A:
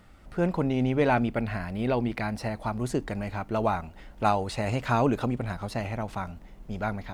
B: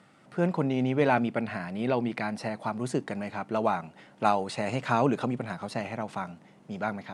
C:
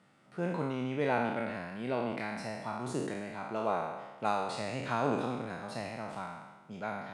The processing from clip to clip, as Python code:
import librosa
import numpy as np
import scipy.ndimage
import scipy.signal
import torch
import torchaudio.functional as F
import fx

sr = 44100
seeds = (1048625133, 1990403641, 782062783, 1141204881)

y1 = scipy.signal.sosfilt(scipy.signal.ellip(3, 1.0, 40, [140.0, 9800.0], 'bandpass', fs=sr, output='sos'), x)
y2 = fx.spec_trails(y1, sr, decay_s=1.2)
y2 = y2 * 10.0 ** (-9.0 / 20.0)